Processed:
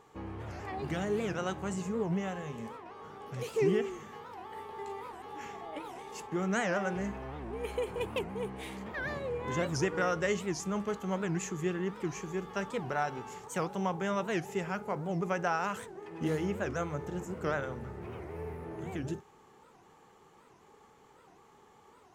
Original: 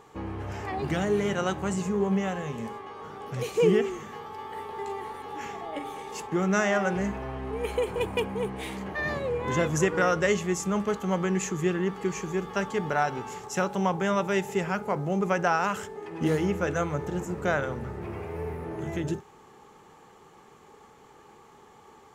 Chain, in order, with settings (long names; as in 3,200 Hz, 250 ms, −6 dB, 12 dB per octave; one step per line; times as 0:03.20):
wow of a warped record 78 rpm, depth 250 cents
level −6.5 dB